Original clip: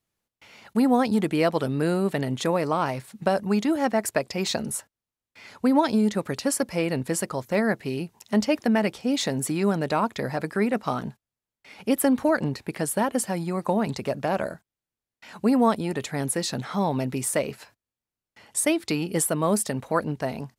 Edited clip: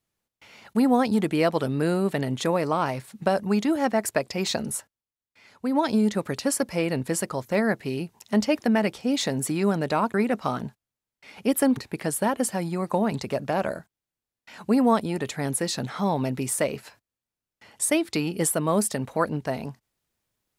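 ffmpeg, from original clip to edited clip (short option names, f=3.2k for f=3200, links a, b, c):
-filter_complex "[0:a]asplit=5[a][b][c][d][e];[a]atrim=end=5.06,asetpts=PTS-STARTPTS,afade=t=out:st=4.76:d=0.3:silence=0.398107[f];[b]atrim=start=5.06:end=5.62,asetpts=PTS-STARTPTS,volume=-8dB[g];[c]atrim=start=5.62:end=10.142,asetpts=PTS-STARTPTS,afade=t=in:d=0.3:silence=0.398107[h];[d]atrim=start=10.558:end=12.192[i];[e]atrim=start=12.518[j];[f][g][h]concat=n=3:v=0:a=1[k];[k][i]acrossfade=d=0.004:c1=hsin:c2=hsin[l];[l][j]acrossfade=d=0.004:c1=hsin:c2=hsin"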